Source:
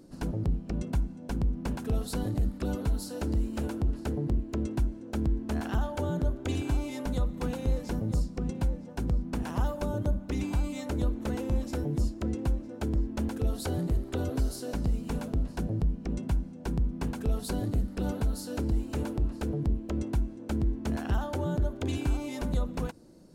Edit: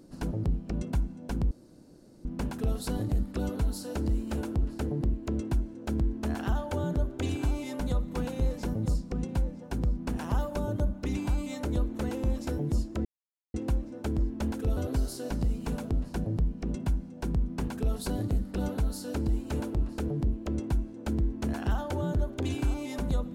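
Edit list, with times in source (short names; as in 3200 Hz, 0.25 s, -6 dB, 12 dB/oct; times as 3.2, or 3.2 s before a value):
1.51 insert room tone 0.74 s
12.31 insert silence 0.49 s
13.54–14.2 cut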